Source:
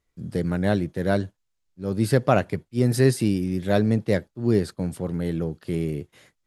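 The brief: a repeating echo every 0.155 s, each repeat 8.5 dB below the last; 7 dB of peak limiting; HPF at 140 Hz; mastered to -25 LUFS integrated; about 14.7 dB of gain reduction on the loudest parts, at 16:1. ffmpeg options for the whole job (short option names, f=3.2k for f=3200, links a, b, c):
-af "highpass=140,acompressor=threshold=-29dB:ratio=16,alimiter=level_in=1.5dB:limit=-24dB:level=0:latency=1,volume=-1.5dB,aecho=1:1:155|310|465|620:0.376|0.143|0.0543|0.0206,volume=11.5dB"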